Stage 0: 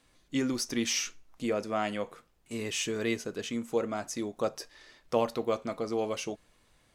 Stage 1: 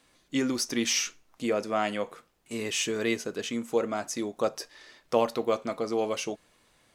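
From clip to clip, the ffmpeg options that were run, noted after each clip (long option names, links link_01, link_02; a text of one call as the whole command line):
ffmpeg -i in.wav -af "lowshelf=frequency=98:gain=-12,volume=3.5dB" out.wav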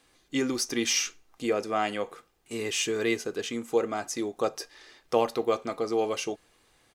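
ffmpeg -i in.wav -af "aecho=1:1:2.5:0.33" out.wav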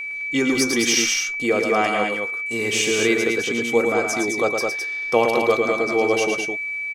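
ffmpeg -i in.wav -filter_complex "[0:a]aeval=exprs='val(0)+0.0224*sin(2*PI*2300*n/s)':channel_layout=same,asplit=2[link_01][link_02];[link_02]aecho=0:1:111|211:0.531|0.596[link_03];[link_01][link_03]amix=inputs=2:normalize=0,volume=6dB" out.wav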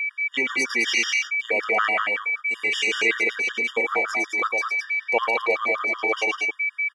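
ffmpeg -i in.wav -af "bandpass=frequency=1700:width_type=q:width=1.2:csg=0,afftfilt=real='re*gt(sin(2*PI*5.3*pts/sr)*(1-2*mod(floor(b*sr/1024/950),2)),0)':imag='im*gt(sin(2*PI*5.3*pts/sr)*(1-2*mod(floor(b*sr/1024/950),2)),0)':win_size=1024:overlap=0.75,volume=6.5dB" out.wav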